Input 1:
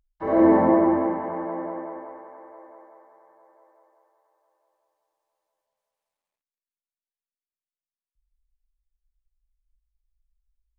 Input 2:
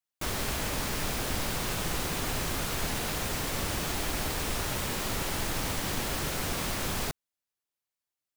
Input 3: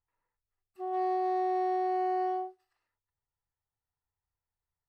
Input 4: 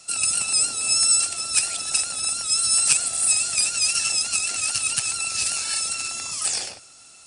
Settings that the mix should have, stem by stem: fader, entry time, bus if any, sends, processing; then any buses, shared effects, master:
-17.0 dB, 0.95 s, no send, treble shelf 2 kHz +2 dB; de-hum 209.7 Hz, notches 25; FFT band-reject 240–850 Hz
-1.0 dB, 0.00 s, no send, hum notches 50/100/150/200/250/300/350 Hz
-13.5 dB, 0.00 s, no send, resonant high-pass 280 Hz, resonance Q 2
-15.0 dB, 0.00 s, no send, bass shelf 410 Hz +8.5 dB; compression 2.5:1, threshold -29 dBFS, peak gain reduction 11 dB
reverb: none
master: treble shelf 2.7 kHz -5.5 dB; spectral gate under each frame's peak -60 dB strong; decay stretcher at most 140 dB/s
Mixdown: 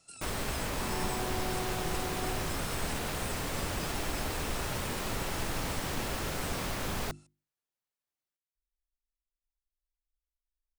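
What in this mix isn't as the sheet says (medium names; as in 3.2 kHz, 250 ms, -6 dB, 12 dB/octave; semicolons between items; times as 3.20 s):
stem 1: entry 0.95 s -> 0.40 s; master: missing decay stretcher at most 140 dB/s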